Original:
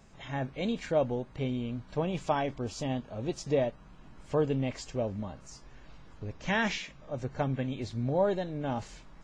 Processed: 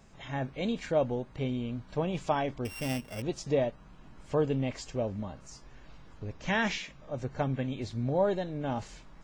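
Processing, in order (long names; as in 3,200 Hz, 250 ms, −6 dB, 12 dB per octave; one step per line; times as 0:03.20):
0:02.65–0:03.22: samples sorted by size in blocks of 16 samples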